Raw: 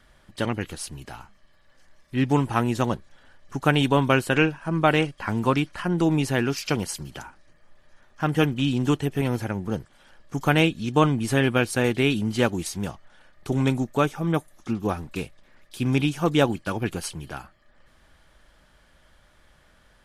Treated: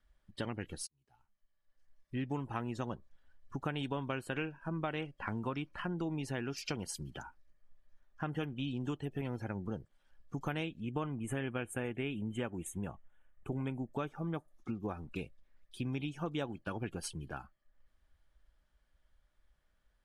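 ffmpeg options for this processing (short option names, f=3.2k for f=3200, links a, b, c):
-filter_complex "[0:a]asettb=1/sr,asplit=3[a][b][c];[a]atrim=end=10.804[d];[b]atrim=start=10.8:end=13.92,asetpts=PTS-STARTPTS,afade=t=in:d=0.004:c=qsin,afade=t=out:st=3.116:d=0.004:c=qsin,asuperstop=centerf=4800:order=4:qfactor=1.3[e];[c]atrim=start=13.916[f];[d][e]acrossfade=d=0.004:c1=hsin:c2=qsin[g];[g][f]acrossfade=d=0.004:c1=qsin:c2=hsin,asplit=2[h][i];[h]atrim=end=0.87,asetpts=PTS-STARTPTS,afade=t=out:st=0.866:d=0.004:c=hsin[j];[i]atrim=start=0.87,asetpts=PTS-STARTPTS,afade=t=in:d=1.29[k];[j][k]concat=n=2:v=0:a=1,afftdn=nr=16:nf=-41,acompressor=threshold=-29dB:ratio=4,volume=-6.5dB"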